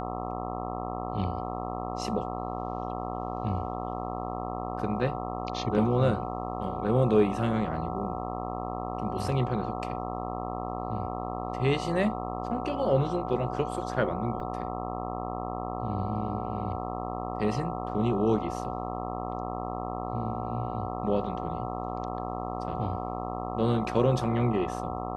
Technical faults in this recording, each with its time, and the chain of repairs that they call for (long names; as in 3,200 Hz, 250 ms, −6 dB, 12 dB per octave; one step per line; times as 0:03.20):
mains buzz 60 Hz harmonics 22 −35 dBFS
whistle 740 Hz −37 dBFS
0:14.40: drop-out 3.4 ms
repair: notch filter 740 Hz, Q 30
hum removal 60 Hz, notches 22
repair the gap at 0:14.40, 3.4 ms